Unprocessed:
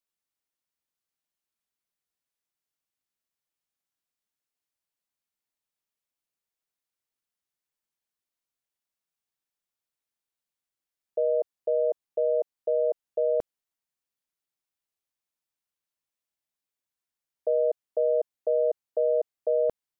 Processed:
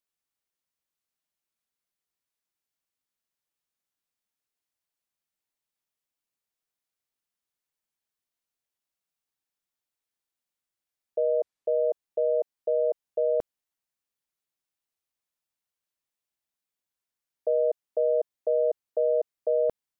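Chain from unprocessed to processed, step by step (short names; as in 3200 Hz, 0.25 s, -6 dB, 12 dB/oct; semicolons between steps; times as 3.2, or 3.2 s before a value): 11.33–11.88 decimation joined by straight lines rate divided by 2×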